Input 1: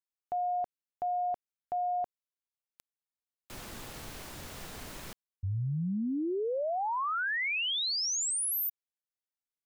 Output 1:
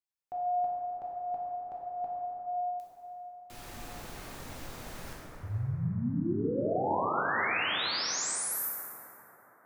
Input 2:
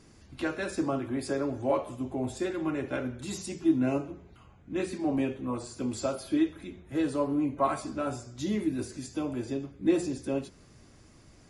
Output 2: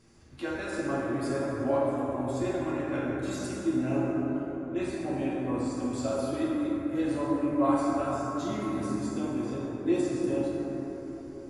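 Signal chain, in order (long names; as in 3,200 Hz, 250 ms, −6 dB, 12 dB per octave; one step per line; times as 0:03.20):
dense smooth reverb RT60 4.5 s, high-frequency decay 0.3×, DRR −6 dB
level −6 dB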